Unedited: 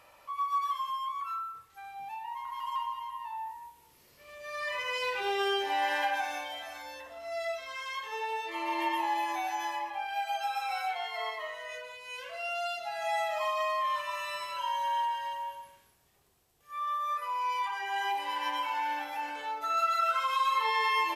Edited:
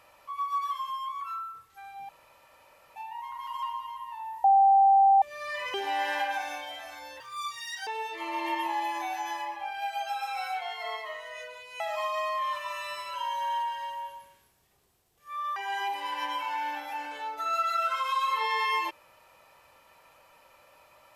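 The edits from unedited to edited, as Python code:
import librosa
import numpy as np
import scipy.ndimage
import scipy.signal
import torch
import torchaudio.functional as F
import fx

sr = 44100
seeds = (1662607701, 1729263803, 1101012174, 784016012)

y = fx.edit(x, sr, fx.insert_room_tone(at_s=2.09, length_s=0.87),
    fx.bleep(start_s=3.57, length_s=0.78, hz=784.0, db=-16.0),
    fx.cut(start_s=4.87, length_s=0.7),
    fx.speed_span(start_s=7.03, length_s=1.18, speed=1.76),
    fx.cut(start_s=12.14, length_s=1.09),
    fx.cut(start_s=16.99, length_s=0.81), tone=tone)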